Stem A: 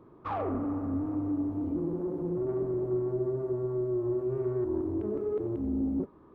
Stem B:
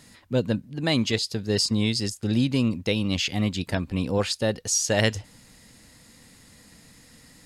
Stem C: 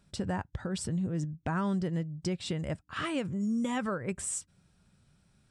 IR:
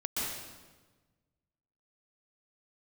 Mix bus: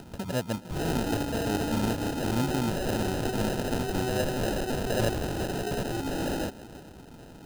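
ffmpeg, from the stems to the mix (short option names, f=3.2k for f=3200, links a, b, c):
-filter_complex "[0:a]aeval=exprs='(mod(22.4*val(0)+1,2)-1)/22.4':c=same,adelay=450,volume=1dB,asplit=2[a][b];[b]volume=-22dB[c];[1:a]lowpass=4.8k,volume=-7.5dB,asplit=3[d][e][f];[e]volume=-24dB[g];[2:a]volume=-1.5dB[h];[f]apad=whole_len=242810[i];[h][i]sidechaincompress=threshold=-49dB:ratio=4:attack=42:release=218[j];[3:a]atrim=start_sample=2205[k];[c][g]amix=inputs=2:normalize=0[l];[l][k]afir=irnorm=-1:irlink=0[m];[a][d][j][m]amix=inputs=4:normalize=0,acrusher=samples=39:mix=1:aa=0.000001,acompressor=mode=upward:threshold=-34dB:ratio=2.5,equalizer=f=2k:t=o:w=0.3:g=-7.5"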